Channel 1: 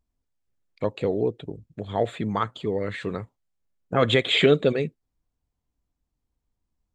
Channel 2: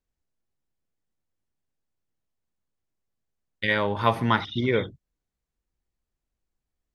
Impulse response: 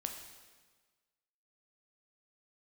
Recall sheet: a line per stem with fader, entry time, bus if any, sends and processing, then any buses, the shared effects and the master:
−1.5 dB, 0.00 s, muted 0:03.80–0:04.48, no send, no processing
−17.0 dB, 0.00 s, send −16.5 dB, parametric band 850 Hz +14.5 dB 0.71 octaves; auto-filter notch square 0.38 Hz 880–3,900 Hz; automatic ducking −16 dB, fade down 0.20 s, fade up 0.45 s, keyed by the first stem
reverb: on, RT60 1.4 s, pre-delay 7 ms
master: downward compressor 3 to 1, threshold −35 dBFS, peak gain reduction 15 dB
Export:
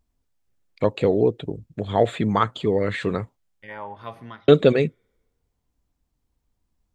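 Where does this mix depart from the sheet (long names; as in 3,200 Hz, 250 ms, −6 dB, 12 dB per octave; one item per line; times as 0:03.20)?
stem 1 −1.5 dB → +5.5 dB
master: missing downward compressor 3 to 1, threshold −35 dBFS, peak gain reduction 15 dB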